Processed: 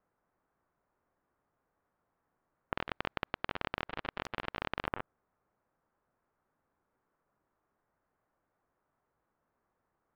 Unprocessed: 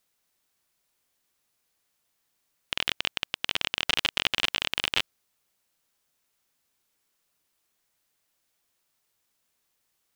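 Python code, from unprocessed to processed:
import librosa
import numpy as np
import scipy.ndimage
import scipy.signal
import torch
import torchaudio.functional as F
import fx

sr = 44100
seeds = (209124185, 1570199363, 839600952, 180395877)

y = scipy.signal.sosfilt(scipy.signal.butter(4, 1400.0, 'lowpass', fs=sr, output='sos'), x)
y = fx.over_compress(y, sr, threshold_db=-39.0, ratio=-0.5)
y = fx.spectral_comp(y, sr, ratio=2.0, at=(2.74, 4.87))
y = y * librosa.db_to_amplitude(4.0)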